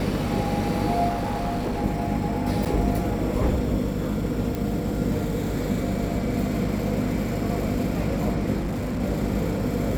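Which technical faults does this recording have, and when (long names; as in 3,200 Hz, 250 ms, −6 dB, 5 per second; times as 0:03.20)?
mains hum 50 Hz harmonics 6 −29 dBFS
0:01.08–0:01.84: clipping −22.5 dBFS
0:02.65–0:02.66: drop-out 7.5 ms
0:04.55: click
0:08.58–0:09.02: clipping −24 dBFS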